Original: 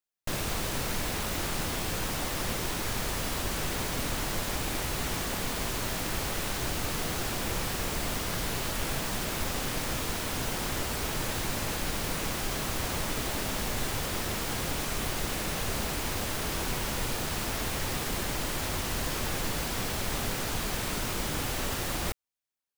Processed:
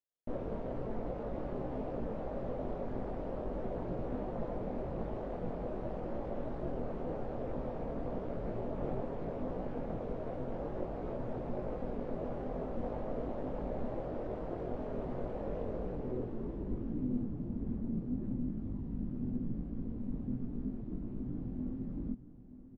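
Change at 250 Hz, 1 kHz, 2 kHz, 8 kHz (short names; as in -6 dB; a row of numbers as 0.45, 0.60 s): -1.0 dB, -10.5 dB, -24.0 dB, under -40 dB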